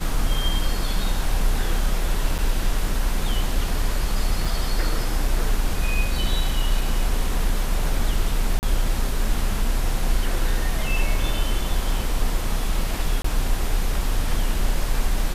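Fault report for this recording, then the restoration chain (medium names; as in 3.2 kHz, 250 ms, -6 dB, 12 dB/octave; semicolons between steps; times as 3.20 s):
2.38–2.39 s: dropout 6.9 ms
4.45 s: dropout 4.3 ms
8.59–8.63 s: dropout 39 ms
13.22–13.24 s: dropout 24 ms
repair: interpolate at 2.38 s, 6.9 ms; interpolate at 4.45 s, 4.3 ms; interpolate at 8.59 s, 39 ms; interpolate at 13.22 s, 24 ms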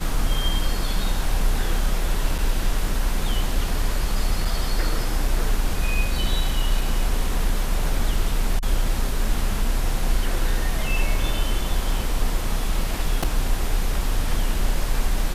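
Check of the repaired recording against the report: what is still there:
nothing left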